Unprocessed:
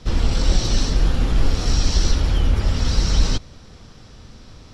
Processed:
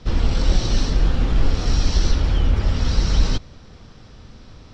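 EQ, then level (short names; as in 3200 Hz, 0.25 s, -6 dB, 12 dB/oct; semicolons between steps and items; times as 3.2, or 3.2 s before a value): air absorption 79 m; 0.0 dB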